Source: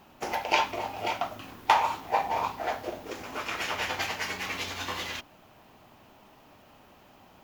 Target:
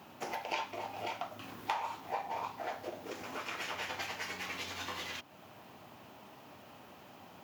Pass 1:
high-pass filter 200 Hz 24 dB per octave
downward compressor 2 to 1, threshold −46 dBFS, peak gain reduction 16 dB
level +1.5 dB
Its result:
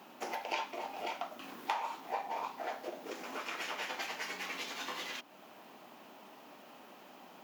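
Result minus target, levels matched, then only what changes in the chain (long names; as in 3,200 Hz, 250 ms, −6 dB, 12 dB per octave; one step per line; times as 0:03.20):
125 Hz band −10.5 dB
change: high-pass filter 89 Hz 24 dB per octave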